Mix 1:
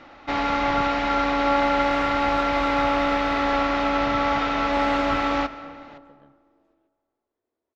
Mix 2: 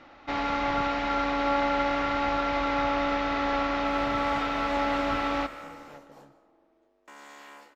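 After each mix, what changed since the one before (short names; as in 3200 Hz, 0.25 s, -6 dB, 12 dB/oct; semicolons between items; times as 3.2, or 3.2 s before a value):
first sound -5.0 dB; second sound: entry +2.35 s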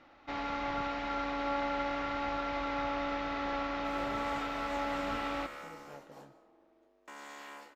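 first sound -8.0 dB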